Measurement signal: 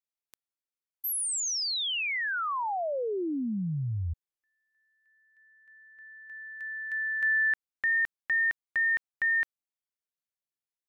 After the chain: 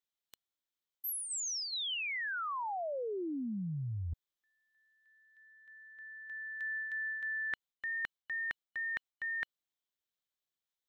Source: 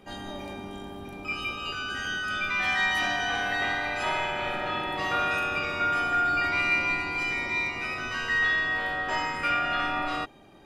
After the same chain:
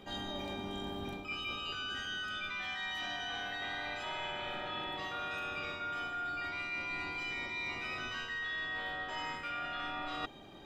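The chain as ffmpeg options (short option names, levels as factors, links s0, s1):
-af "superequalizer=13b=2:16b=0.447,areverse,acompressor=threshold=0.0178:ratio=16:attack=8.5:release=424:knee=1:detection=peak,areverse"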